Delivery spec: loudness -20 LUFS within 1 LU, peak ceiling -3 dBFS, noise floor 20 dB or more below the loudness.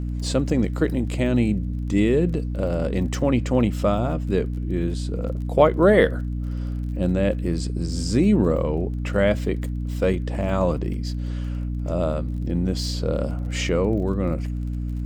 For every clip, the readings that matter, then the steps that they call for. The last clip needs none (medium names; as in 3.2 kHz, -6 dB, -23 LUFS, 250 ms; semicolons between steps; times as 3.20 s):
tick rate 29 per s; hum 60 Hz; highest harmonic 300 Hz; hum level -24 dBFS; loudness -23.0 LUFS; peak level -2.0 dBFS; loudness target -20.0 LUFS
-> de-click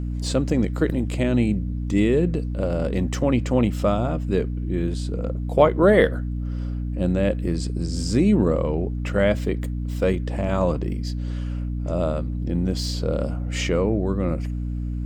tick rate 0.20 per s; hum 60 Hz; highest harmonic 300 Hz; hum level -24 dBFS
-> de-hum 60 Hz, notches 5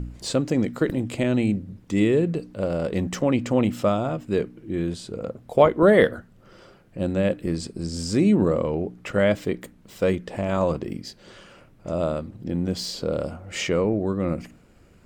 hum not found; loudness -24.0 LUFS; peak level -2.5 dBFS; loudness target -20.0 LUFS
-> trim +4 dB; peak limiter -3 dBFS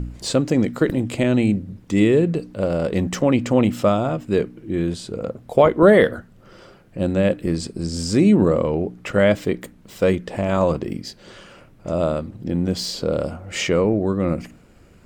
loudness -20.5 LUFS; peak level -3.0 dBFS; noise floor -50 dBFS